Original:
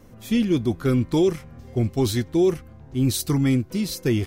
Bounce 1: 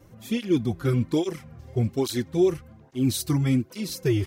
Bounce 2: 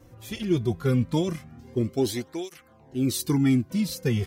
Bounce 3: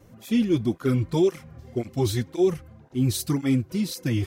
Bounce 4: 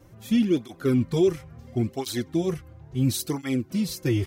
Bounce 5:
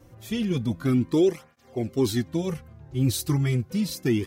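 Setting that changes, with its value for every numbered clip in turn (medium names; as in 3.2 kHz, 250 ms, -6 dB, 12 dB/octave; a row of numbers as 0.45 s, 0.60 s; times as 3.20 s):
cancelling through-zero flanger, nulls at: 1.2 Hz, 0.2 Hz, 1.9 Hz, 0.73 Hz, 0.32 Hz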